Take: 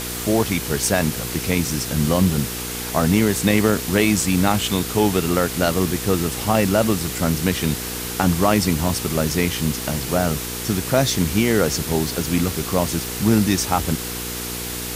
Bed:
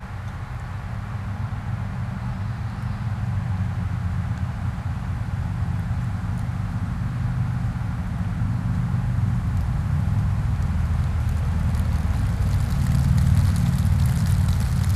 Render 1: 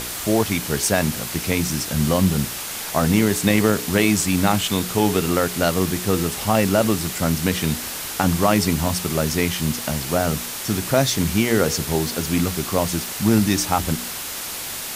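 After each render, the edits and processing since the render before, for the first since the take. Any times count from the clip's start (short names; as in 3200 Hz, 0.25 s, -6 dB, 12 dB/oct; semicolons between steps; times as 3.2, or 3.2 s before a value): de-hum 60 Hz, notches 8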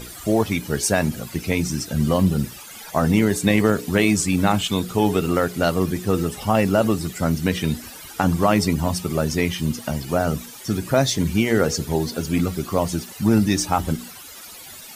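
denoiser 15 dB, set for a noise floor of -30 dBFS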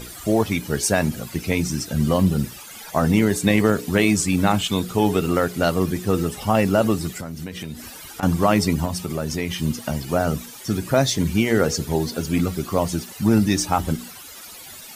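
7.17–8.23 compressor, threshold -28 dBFS; 8.85–9.51 compressor 2:1, threshold -23 dBFS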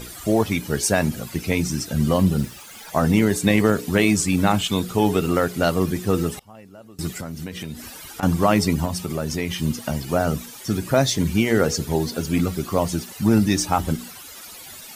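2.4–2.91 self-modulated delay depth 0.15 ms; 6.35–6.99 flipped gate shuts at -24 dBFS, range -26 dB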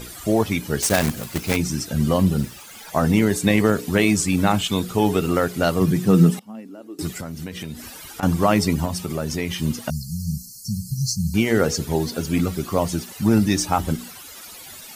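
0.82–1.57 block floating point 3-bit; 5.8–7.01 resonant high-pass 120 Hz -> 340 Hz, resonance Q 5.8; 9.9–11.34 brick-wall FIR band-stop 220–4100 Hz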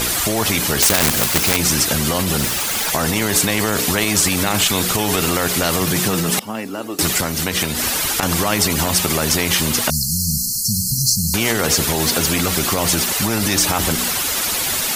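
maximiser +15 dB; spectral compressor 2:1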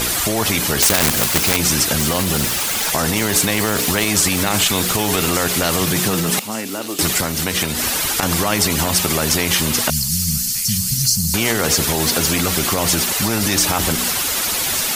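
thin delay 1.175 s, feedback 52%, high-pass 2600 Hz, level -11 dB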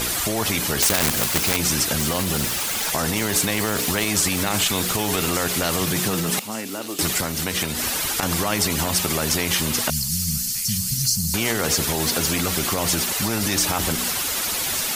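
gain -4.5 dB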